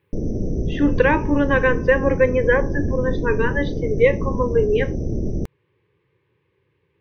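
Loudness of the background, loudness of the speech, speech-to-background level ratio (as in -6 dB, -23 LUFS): -26.0 LUFS, -20.5 LUFS, 5.5 dB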